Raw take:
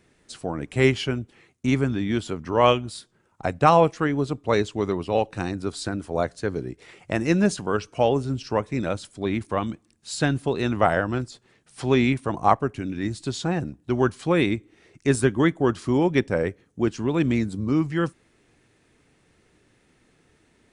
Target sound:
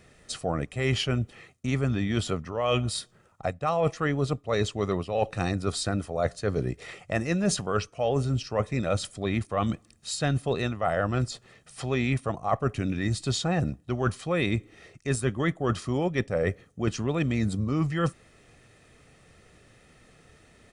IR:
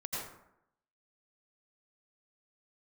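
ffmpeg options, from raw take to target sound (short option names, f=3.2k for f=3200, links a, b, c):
-af "aecho=1:1:1.6:0.45,areverse,acompressor=threshold=-27dB:ratio=16,areverse,volume=5dB"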